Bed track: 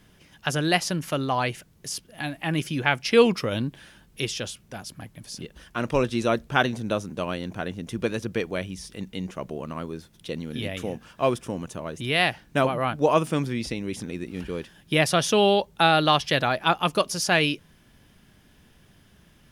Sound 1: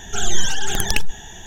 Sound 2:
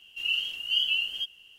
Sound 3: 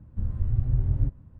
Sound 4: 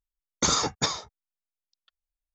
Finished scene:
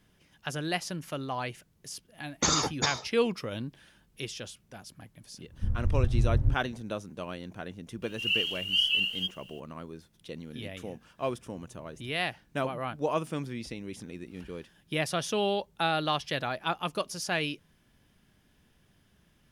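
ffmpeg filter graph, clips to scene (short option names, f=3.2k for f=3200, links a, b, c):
-filter_complex "[3:a]asplit=2[a][b];[0:a]volume=-9dB[c];[2:a]acrusher=bits=10:mix=0:aa=0.000001[d];[b]bandpass=f=450:t=q:w=1.3:csg=0[e];[4:a]atrim=end=2.34,asetpts=PTS-STARTPTS,volume=-2.5dB,afade=t=in:d=0.004:c=hsin,afade=t=out:st=2.336:d=0.004:c=hsin,adelay=2000[f];[a]atrim=end=1.39,asetpts=PTS-STARTPTS,volume=-1dB,afade=t=in:d=0.1,afade=t=out:st=1.29:d=0.1,adelay=240345S[g];[d]atrim=end=1.58,asetpts=PTS-STARTPTS,afade=t=in:d=0.004:c=hsin,afade=t=out:st=1.576:d=0.004:c=hsin,adelay=353682S[h];[e]atrim=end=1.39,asetpts=PTS-STARTPTS,volume=-17.5dB,afade=t=in:d=0.004:c=hsin,afade=t=out:st=1.386:d=0.004:c=hsin,adelay=11050[i];[c][f][g][h][i]amix=inputs=5:normalize=0"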